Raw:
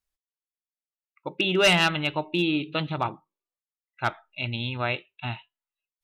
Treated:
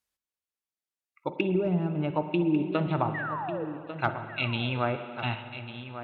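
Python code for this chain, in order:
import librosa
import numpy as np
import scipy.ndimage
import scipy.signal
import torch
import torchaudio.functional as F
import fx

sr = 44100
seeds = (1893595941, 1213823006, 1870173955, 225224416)

p1 = scipy.signal.sosfilt(scipy.signal.butter(2, 84.0, 'highpass', fs=sr, output='sos'), x)
p2 = fx.env_lowpass_down(p1, sr, base_hz=310.0, full_db=-19.5)
p3 = fx.level_steps(p2, sr, step_db=19)
p4 = p2 + (p3 * librosa.db_to_amplitude(0.0))
p5 = fx.spec_paint(p4, sr, seeds[0], shape='fall', start_s=3.14, length_s=0.51, low_hz=430.0, high_hz=2000.0, level_db=-33.0)
p6 = p5 + fx.echo_single(p5, sr, ms=1146, db=-11.5, dry=0)
p7 = fx.rev_spring(p6, sr, rt60_s=2.4, pass_ms=(45, 54), chirp_ms=30, drr_db=9.0)
y = p7 * librosa.db_to_amplitude(-1.0)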